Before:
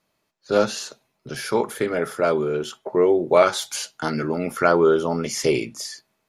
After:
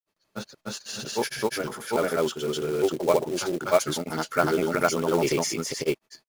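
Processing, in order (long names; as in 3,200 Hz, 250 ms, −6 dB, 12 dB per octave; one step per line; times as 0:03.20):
granular cloud 100 ms, grains 20 per second, spray 417 ms, pitch spread up and down by 0 semitones
transient designer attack −1 dB, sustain +5 dB
floating-point word with a short mantissa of 2 bits
level −2 dB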